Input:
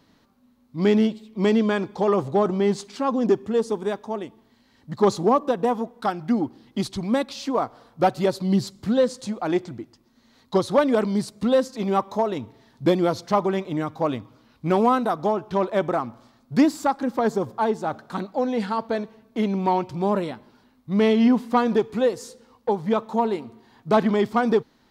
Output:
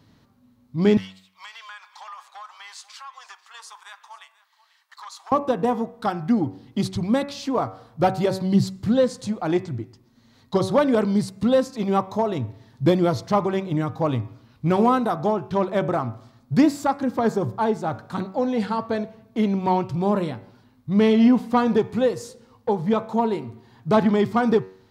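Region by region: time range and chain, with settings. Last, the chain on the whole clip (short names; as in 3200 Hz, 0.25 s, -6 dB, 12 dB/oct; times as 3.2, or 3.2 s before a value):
0.97–5.32 steep high-pass 1000 Hz + compressor 4:1, threshold -37 dBFS + echo 0.489 s -19 dB
whole clip: bell 110 Hz +14 dB 0.85 oct; de-hum 94.6 Hz, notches 29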